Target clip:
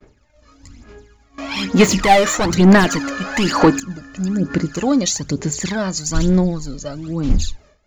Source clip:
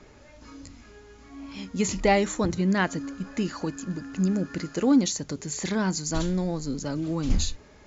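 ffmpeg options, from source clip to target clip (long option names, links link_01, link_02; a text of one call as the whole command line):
ffmpeg -i in.wav -filter_complex "[0:a]asettb=1/sr,asplit=3[link_01][link_02][link_03];[link_01]atrim=end=1.384[link_04];[link_02]atrim=start=1.38:end=3.8,asetpts=PTS-STARTPTS,afade=type=in:duration=0.004:curve=qsin,afade=type=out:start_time=2.416:duration=0.004:curve=qsin,asplit=2[link_05][link_06];[link_06]highpass=frequency=720:poles=1,volume=26dB,asoftclip=type=tanh:threshold=-10dB[link_07];[link_05][link_07]amix=inputs=2:normalize=0,lowpass=frequency=3700:poles=1,volume=-6dB[link_08];[link_03]atrim=start=3.796[link_09];[link_04][link_08]acrossfade=duration=0.004:curve1=hsin:curve2=qsin[link_10];[link_10][link_09]acrossfade=duration=0.004:curve1=qsin:curve2=hsin,aphaser=in_gain=1:out_gain=1:delay=1.7:decay=0.62:speed=1.1:type=sinusoidal,agate=range=-33dB:threshold=-39dB:ratio=3:detection=peak,dynaudnorm=framelen=100:gausssize=17:maxgain=10dB,volume=-1dB" out.wav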